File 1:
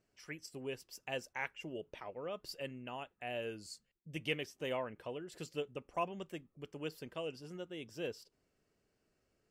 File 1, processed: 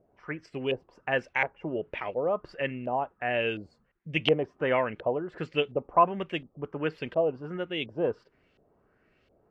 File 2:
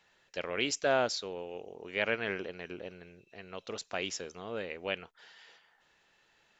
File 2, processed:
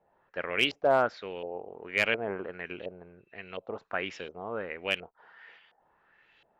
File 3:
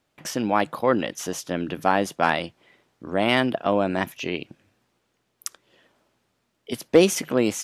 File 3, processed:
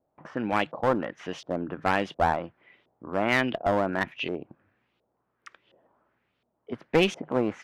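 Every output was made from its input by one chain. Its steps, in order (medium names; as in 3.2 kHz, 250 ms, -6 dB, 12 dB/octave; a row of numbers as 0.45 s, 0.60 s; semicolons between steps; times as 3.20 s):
LFO low-pass saw up 1.4 Hz 600–3500 Hz; one-sided clip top -17.5 dBFS; peak normalisation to -9 dBFS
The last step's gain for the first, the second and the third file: +11.0 dB, +1.0 dB, -5.0 dB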